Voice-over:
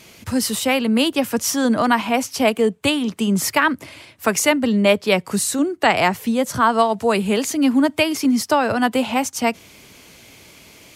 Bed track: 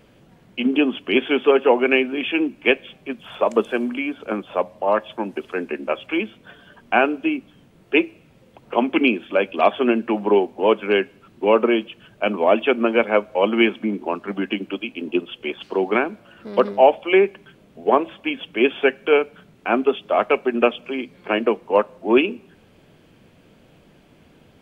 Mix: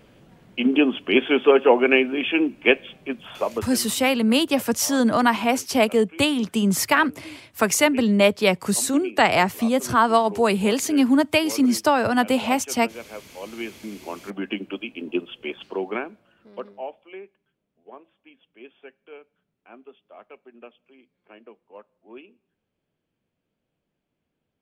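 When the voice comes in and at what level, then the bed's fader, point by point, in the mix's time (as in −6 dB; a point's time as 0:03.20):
3.35 s, −1.5 dB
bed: 0:03.25 0 dB
0:03.95 −20.5 dB
0:13.27 −20.5 dB
0:14.51 −4 dB
0:15.59 −4 dB
0:17.38 −27.5 dB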